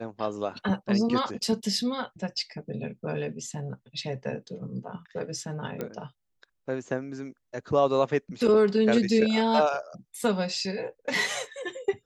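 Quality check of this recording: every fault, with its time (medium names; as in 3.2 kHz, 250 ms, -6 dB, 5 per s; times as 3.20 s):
5.81 s: pop -19 dBFS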